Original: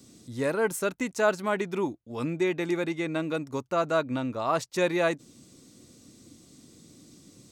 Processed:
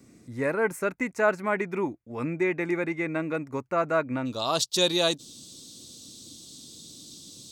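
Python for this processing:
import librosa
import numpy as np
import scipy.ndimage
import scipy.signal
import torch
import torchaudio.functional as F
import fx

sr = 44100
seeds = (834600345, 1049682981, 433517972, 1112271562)

y = fx.high_shelf_res(x, sr, hz=2700.0, db=fx.steps((0.0, -6.0), (4.25, 9.5)), q=3.0)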